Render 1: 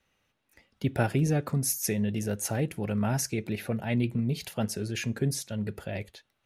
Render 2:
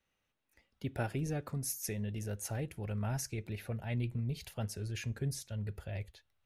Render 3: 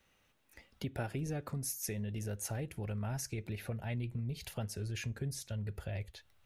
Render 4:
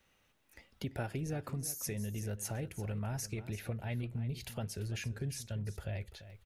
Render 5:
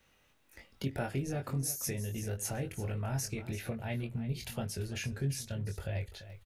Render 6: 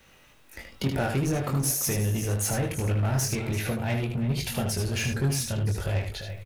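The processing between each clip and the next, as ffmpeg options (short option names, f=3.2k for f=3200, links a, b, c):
-af "asubboost=boost=8:cutoff=78,volume=-9dB"
-af "acompressor=threshold=-52dB:ratio=2.5,volume=10.5dB"
-af "aecho=1:1:340:0.2"
-filter_complex "[0:a]asplit=2[a][b];[b]adelay=22,volume=-4.5dB[c];[a][c]amix=inputs=2:normalize=0,volume=2dB"
-filter_complex "[0:a]asplit=2[a][b];[b]aeval=exprs='0.0119*(abs(mod(val(0)/0.0119+3,4)-2)-1)':c=same,volume=-5.5dB[c];[a][c]amix=inputs=2:normalize=0,aecho=1:1:77:0.501,volume=7.5dB"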